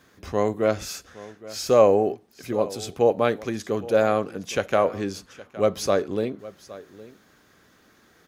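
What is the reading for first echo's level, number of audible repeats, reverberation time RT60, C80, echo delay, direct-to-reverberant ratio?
−18.5 dB, 1, no reverb audible, no reverb audible, 815 ms, no reverb audible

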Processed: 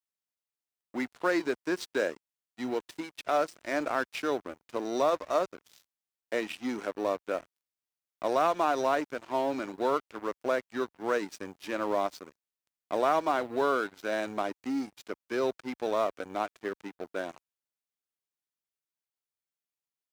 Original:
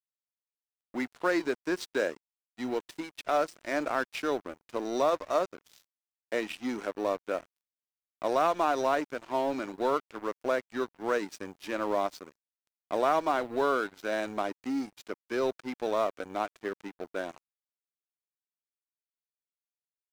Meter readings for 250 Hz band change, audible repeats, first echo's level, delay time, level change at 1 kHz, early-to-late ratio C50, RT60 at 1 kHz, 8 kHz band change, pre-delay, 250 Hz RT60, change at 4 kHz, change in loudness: 0.0 dB, no echo audible, no echo audible, no echo audible, 0.0 dB, no reverb audible, no reverb audible, 0.0 dB, no reverb audible, no reverb audible, 0.0 dB, 0.0 dB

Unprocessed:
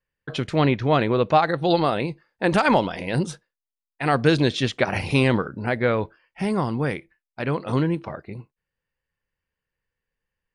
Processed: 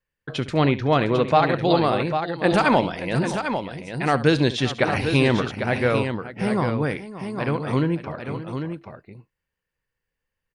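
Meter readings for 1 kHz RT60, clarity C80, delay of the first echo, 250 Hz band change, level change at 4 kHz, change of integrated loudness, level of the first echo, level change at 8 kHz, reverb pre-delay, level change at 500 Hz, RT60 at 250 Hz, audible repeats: no reverb audible, no reverb audible, 71 ms, +1.0 dB, +1.0 dB, 0.0 dB, −15.5 dB, +1.0 dB, no reverb audible, +1.0 dB, no reverb audible, 3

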